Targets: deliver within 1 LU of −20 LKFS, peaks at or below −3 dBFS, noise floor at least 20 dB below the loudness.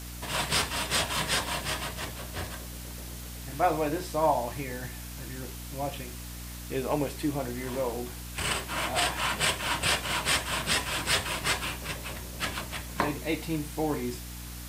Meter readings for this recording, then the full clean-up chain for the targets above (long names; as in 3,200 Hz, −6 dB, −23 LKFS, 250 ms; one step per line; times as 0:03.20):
mains hum 60 Hz; hum harmonics up to 300 Hz; level of the hum −39 dBFS; background noise floor −41 dBFS; target noise floor −50 dBFS; integrated loudness −30.0 LKFS; sample peak −10.0 dBFS; target loudness −20.0 LKFS
→ mains-hum notches 60/120/180/240/300 Hz
noise reduction from a noise print 9 dB
level +10 dB
brickwall limiter −3 dBFS